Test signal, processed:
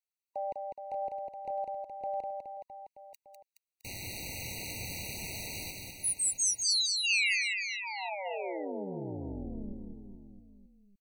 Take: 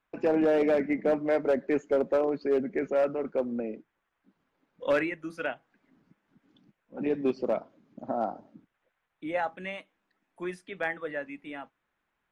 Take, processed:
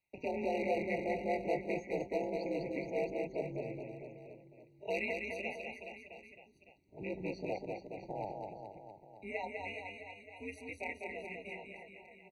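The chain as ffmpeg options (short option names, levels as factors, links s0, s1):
-filter_complex "[0:a]highshelf=f=1900:t=q:w=1.5:g=8,acrossover=split=490|2300[s0][s1][s2];[s0]asoftclip=type=tanh:threshold=0.0376[s3];[s3][s1][s2]amix=inputs=3:normalize=0,aeval=exprs='val(0)*sin(2*PI*98*n/s)':c=same,aecho=1:1:200|420|662|928.2|1221:0.631|0.398|0.251|0.158|0.1,afftfilt=real='re*eq(mod(floor(b*sr/1024/950),2),0)':imag='im*eq(mod(floor(b*sr/1024/950),2),0)':win_size=1024:overlap=0.75,volume=0.447"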